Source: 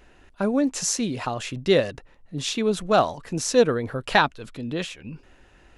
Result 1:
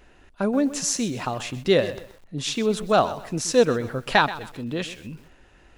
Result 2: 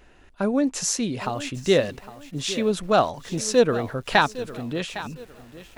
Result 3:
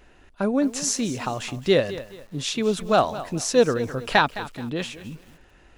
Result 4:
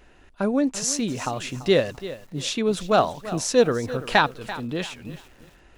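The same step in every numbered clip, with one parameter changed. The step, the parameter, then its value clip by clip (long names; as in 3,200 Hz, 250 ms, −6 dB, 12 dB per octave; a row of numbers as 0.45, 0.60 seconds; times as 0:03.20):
feedback echo at a low word length, delay time: 128, 808, 213, 338 milliseconds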